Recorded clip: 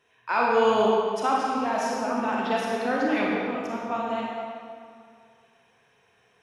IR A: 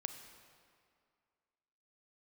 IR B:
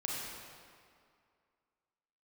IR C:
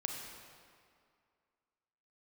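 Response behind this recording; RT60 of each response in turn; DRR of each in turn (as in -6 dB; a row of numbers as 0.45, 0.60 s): B; 2.2, 2.2, 2.2 s; 7.0, -4.0, 1.5 dB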